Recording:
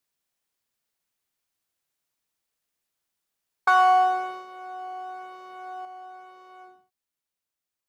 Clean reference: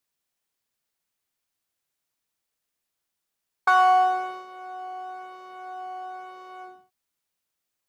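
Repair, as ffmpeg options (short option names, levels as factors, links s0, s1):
-af "asetnsamples=n=441:p=0,asendcmd='5.85 volume volume 6dB',volume=1"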